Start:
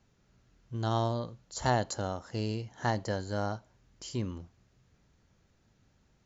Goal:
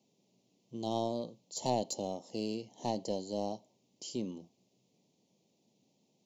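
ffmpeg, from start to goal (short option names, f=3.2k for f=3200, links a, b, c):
-filter_complex "[0:a]highpass=f=180:w=0.5412,highpass=f=180:w=1.3066,asplit=2[a][b];[b]aeval=exprs='clip(val(0),-1,0.0224)':c=same,volume=-4dB[c];[a][c]amix=inputs=2:normalize=0,asuperstop=centerf=1500:order=4:qfactor=0.74,volume=-4.5dB"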